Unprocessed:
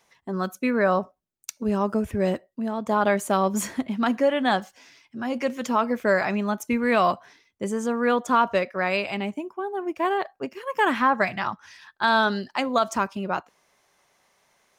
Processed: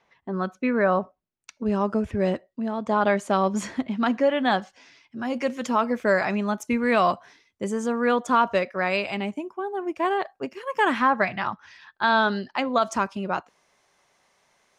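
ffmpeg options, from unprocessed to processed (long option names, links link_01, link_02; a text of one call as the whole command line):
ffmpeg -i in.wav -af "asetnsamples=nb_out_samples=441:pad=0,asendcmd='1.66 lowpass f 5600;5.19 lowpass f 10000;11.12 lowpass f 4300;12.82 lowpass f 9600',lowpass=3000" out.wav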